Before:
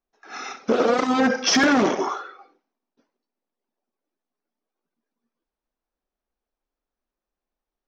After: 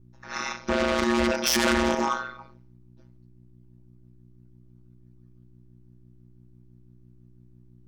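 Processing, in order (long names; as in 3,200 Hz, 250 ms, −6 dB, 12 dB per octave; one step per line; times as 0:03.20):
in parallel at −8 dB: sine wavefolder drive 12 dB, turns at −9 dBFS
on the sum: phases set to zero 294 Hz
mains hum 60 Hz, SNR 22 dB
ring modulation 63 Hz
level −2.5 dB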